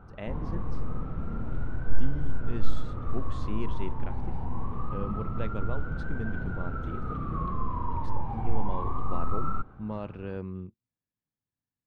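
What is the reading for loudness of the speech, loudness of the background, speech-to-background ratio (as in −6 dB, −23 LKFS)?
−40.0 LKFS, −35.5 LKFS, −4.5 dB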